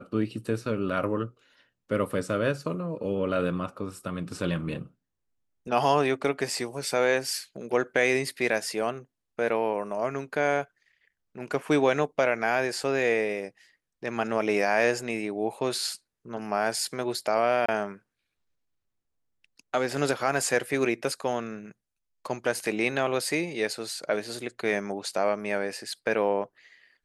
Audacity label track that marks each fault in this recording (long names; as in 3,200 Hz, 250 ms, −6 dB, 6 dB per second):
17.660000	17.680000	drop-out 25 ms